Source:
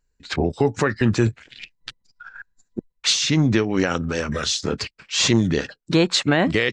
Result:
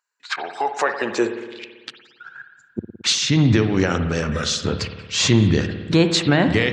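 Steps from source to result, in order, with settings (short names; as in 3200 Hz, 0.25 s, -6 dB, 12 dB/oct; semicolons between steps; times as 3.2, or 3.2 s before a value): high-pass sweep 1100 Hz -> 87 Hz, 0.35–2.86; spring tank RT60 1.4 s, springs 55 ms, chirp 40 ms, DRR 7.5 dB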